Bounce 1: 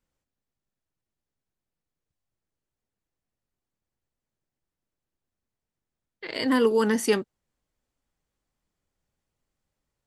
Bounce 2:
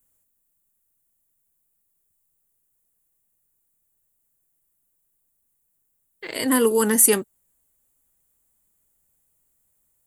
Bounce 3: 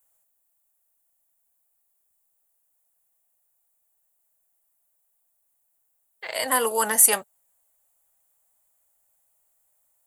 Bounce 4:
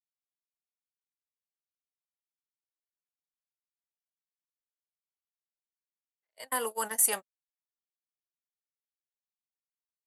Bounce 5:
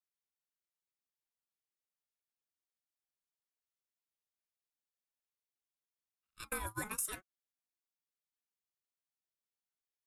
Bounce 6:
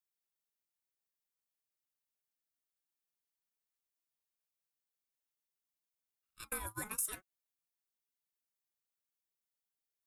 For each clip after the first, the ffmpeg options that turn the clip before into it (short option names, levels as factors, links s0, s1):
-af "aexciter=amount=5.1:drive=9.7:freq=7500,volume=1.26"
-af "lowshelf=f=470:t=q:w=3:g=-11.5"
-af "agate=range=0.00316:threshold=0.0631:ratio=16:detection=peak,volume=0.355"
-af "acompressor=threshold=0.0224:ratio=5,aeval=exprs='val(0)*sin(2*PI*750*n/s+750*0.3/0.68*sin(2*PI*0.68*n/s))':c=same"
-af "highshelf=f=9400:g=8,volume=0.708"